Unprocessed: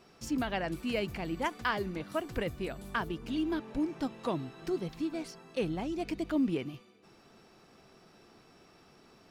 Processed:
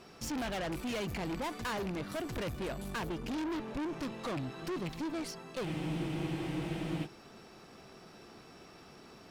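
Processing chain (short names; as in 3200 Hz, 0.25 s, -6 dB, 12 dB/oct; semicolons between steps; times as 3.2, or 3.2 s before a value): rattling part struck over -35 dBFS, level -31 dBFS; tube stage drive 41 dB, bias 0.45; spectral freeze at 5.67, 1.38 s; gain +7 dB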